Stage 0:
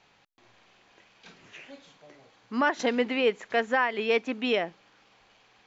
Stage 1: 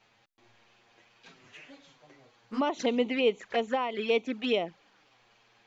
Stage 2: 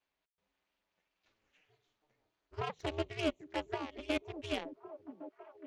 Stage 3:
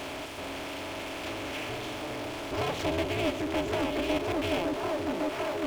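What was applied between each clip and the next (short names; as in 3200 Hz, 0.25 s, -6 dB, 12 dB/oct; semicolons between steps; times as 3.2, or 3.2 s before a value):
envelope flanger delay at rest 9.2 ms, full sweep at -23 dBFS
added harmonics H 7 -19 dB, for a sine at -13.5 dBFS; ring modulator 160 Hz; delay with a stepping band-pass 0.555 s, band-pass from 230 Hz, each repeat 0.7 oct, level -7.5 dB; gain -5.5 dB
per-bin compression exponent 0.4; power-law curve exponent 0.5; gain -3.5 dB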